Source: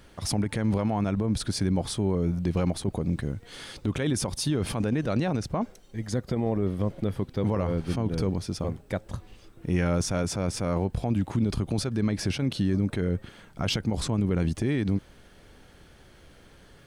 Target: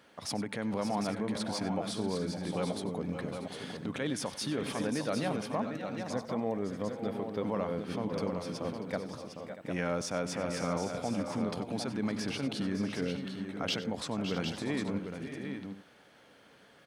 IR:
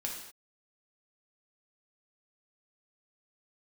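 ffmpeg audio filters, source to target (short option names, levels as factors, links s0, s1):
-filter_complex "[0:a]highpass=250,equalizer=f=360:t=o:w=0.28:g=-8.5,asplit=2[s0][s1];[s1]adynamicsmooth=sensitivity=1.5:basefreq=5700,volume=0.944[s2];[s0][s2]amix=inputs=2:normalize=0,aecho=1:1:95|560|575|639|755|831:0.158|0.251|0.237|0.168|0.447|0.133,volume=0.376"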